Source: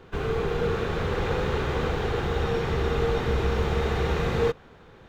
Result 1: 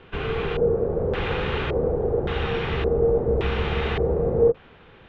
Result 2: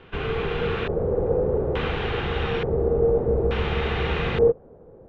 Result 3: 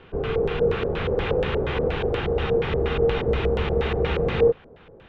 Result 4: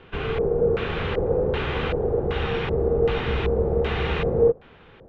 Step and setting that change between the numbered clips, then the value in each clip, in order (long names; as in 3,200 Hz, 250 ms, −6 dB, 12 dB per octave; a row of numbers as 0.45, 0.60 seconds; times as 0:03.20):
auto-filter low-pass, speed: 0.88, 0.57, 4.2, 1.3 Hertz